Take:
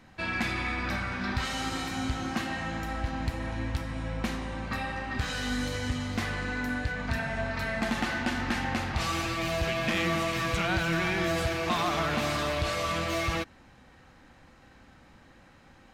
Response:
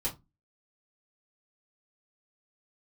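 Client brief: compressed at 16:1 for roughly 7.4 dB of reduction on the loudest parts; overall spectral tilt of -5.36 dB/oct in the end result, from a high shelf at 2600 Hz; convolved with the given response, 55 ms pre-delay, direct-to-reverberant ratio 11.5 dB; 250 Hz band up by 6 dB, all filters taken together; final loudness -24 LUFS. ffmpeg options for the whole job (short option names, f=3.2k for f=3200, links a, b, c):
-filter_complex "[0:a]equalizer=f=250:t=o:g=7.5,highshelf=f=2.6k:g=-9,acompressor=threshold=-28dB:ratio=16,asplit=2[a][b];[1:a]atrim=start_sample=2205,adelay=55[c];[b][c]afir=irnorm=-1:irlink=0,volume=-15dB[d];[a][d]amix=inputs=2:normalize=0,volume=9dB"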